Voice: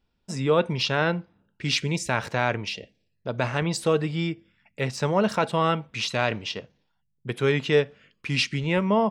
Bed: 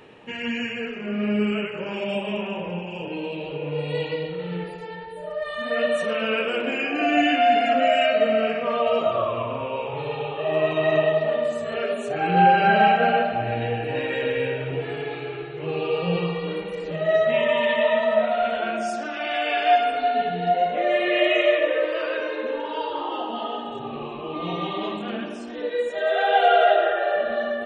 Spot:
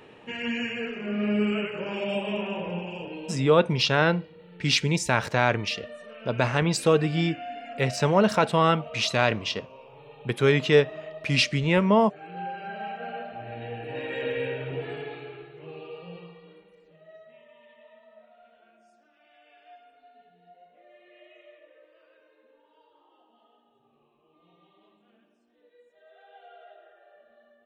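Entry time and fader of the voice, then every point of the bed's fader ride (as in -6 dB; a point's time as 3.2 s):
3.00 s, +2.0 dB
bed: 2.88 s -2 dB
3.84 s -19.5 dB
12.78 s -19.5 dB
14.27 s -5 dB
14.91 s -5 dB
17.46 s -34 dB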